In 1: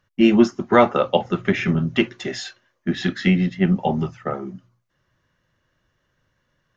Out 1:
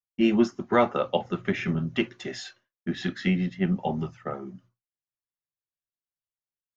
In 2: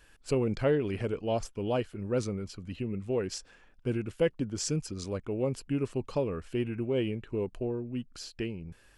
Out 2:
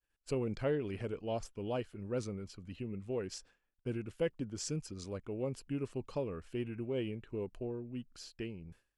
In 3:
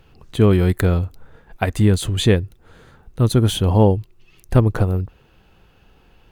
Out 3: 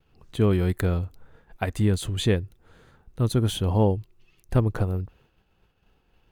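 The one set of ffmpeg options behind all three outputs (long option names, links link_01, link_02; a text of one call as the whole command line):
ffmpeg -i in.wav -af "agate=range=-33dB:threshold=-46dB:ratio=3:detection=peak,volume=-7dB" out.wav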